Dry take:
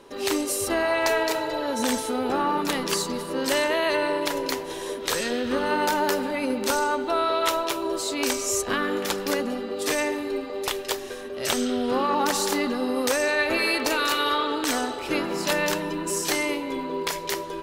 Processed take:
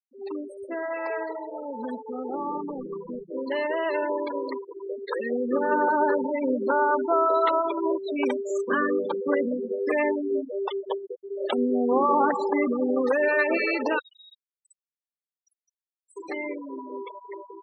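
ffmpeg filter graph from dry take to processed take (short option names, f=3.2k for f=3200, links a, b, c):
-filter_complex "[0:a]asettb=1/sr,asplit=3[a][b][c];[a]atrim=end=2.334[d];[b]atrim=start=2.33:end=3.3,asetpts=PTS-STARTPTS,afade=t=in:d=0.004:c=qsin,afade=t=out:st=0.966:d=0.004:c=qsin,lowpass=1.2k,lowshelf=f=78:g=11.5[e];[c]atrim=start=3.296[f];[d][e]acrossfade=d=0.004:c1=hsin:c2=qsin[g];[g][f]acrossfade=d=0.004:c1=qsin:c2=hsin,asettb=1/sr,asplit=3[h][i][j];[h]atrim=end=6.184[k];[i]atrim=start=6.18:end=7.34,asetpts=PTS-STARTPTS,afade=t=in:d=0.004:c=qsin,afade=t=out:st=1.156:d=0.004:c=qsin,highpass=150,lowpass=7k,adynamicequalizer=threshold=0.0141:dfrequency=2000:dqfactor=0.7:tfrequency=2000:tqfactor=0.7:attack=5:release=100:ratio=0.375:range=2:mode=cutabove:tftype=highshelf[l];[j]atrim=start=7.336[m];[k][l]acrossfade=d=0.004:c1=hsin:c2=qsin[n];[n][m]acrossfade=d=0.004:c1=qsin:c2=hsin,asettb=1/sr,asplit=3[o][p][q];[o]atrim=end=13.994[r];[p]atrim=start=13.99:end=16.17,asetpts=PTS-STARTPTS,afade=t=in:d=0.004:c=qsin,afade=t=out:st=2.176:d=0.004:c=qsin,highpass=1.1k,aderivative[s];[q]atrim=start=16.166[t];[r][s]acrossfade=d=0.004:c1=hsin:c2=qsin[u];[u][t]acrossfade=d=0.004:c1=qsin:c2=hsin,afftfilt=real='re*gte(hypot(re,im),0.126)':imag='im*gte(hypot(re,im),0.126)':win_size=1024:overlap=0.75,acrossover=split=170 2700:gain=0.224 1 0.141[v][w][x];[v][w][x]amix=inputs=3:normalize=0,dynaudnorm=f=970:g=9:m=11.5dB,volume=-6.5dB"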